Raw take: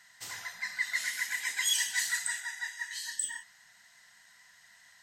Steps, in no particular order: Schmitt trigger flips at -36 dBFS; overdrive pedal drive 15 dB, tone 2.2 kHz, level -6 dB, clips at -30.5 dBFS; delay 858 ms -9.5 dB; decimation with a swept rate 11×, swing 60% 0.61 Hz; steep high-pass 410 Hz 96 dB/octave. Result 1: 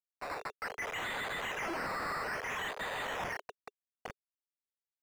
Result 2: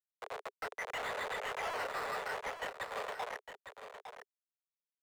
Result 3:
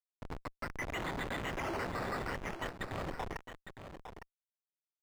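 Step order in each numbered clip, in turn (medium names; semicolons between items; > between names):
delay > Schmitt trigger > steep high-pass > decimation with a swept rate > overdrive pedal; decimation with a swept rate > Schmitt trigger > steep high-pass > overdrive pedal > delay; steep high-pass > decimation with a swept rate > Schmitt trigger > overdrive pedal > delay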